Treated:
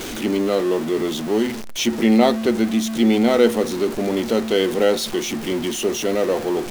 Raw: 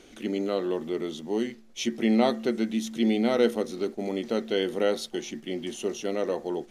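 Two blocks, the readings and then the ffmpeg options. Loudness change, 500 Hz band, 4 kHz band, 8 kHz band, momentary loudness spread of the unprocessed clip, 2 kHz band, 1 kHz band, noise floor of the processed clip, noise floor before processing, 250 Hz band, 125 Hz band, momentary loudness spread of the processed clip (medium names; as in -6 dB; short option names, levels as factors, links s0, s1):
+8.5 dB, +8.0 dB, +9.5 dB, +12.0 dB, 9 LU, +9.0 dB, +8.5 dB, -30 dBFS, -52 dBFS, +8.0 dB, +9.0 dB, 7 LU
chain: -af "aeval=exprs='val(0)+0.5*0.0266*sgn(val(0))':c=same,volume=2.11"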